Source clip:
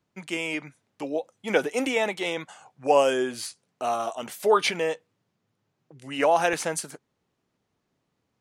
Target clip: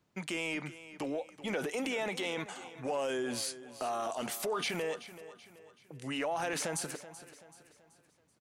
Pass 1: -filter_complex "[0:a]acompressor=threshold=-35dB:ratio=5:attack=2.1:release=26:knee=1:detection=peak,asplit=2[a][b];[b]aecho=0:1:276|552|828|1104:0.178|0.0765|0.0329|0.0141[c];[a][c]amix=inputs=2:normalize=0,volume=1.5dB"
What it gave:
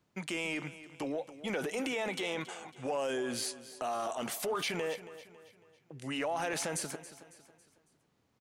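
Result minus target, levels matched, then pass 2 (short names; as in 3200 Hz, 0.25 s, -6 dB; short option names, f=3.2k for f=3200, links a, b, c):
echo 0.105 s early
-filter_complex "[0:a]acompressor=threshold=-35dB:ratio=5:attack=2.1:release=26:knee=1:detection=peak,asplit=2[a][b];[b]aecho=0:1:381|762|1143|1524:0.178|0.0765|0.0329|0.0141[c];[a][c]amix=inputs=2:normalize=0,volume=1.5dB"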